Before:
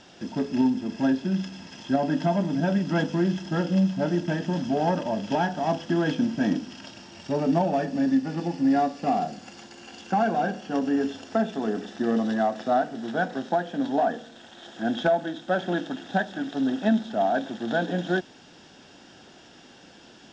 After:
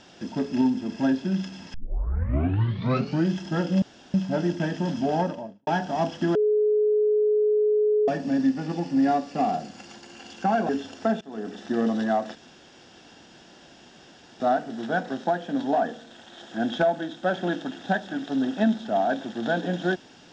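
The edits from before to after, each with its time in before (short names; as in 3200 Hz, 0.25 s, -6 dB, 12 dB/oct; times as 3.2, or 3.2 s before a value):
1.74 tape start 1.56 s
3.82 insert room tone 0.32 s
4.79–5.35 studio fade out
6.03–7.76 bleep 423 Hz -18 dBFS
10.37–10.99 cut
11.51–11.95 fade in linear, from -20 dB
12.65 insert room tone 2.05 s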